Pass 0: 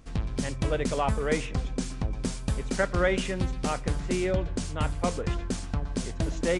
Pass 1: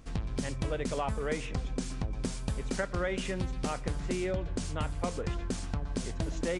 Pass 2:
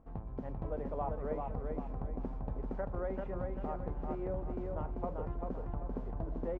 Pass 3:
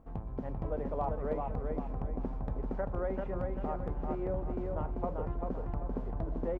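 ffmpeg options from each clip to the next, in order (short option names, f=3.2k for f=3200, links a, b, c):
-af "acompressor=threshold=-30dB:ratio=3"
-af "lowpass=f=860:t=q:w=1.8,bandreject=f=60:t=h:w=6,bandreject=f=120:t=h:w=6,bandreject=f=180:t=h:w=6,aecho=1:1:391|782|1173|1564|1955:0.668|0.254|0.0965|0.0367|0.0139,volume=-8dB"
-af "asoftclip=type=hard:threshold=-25.5dB,volume=3dB"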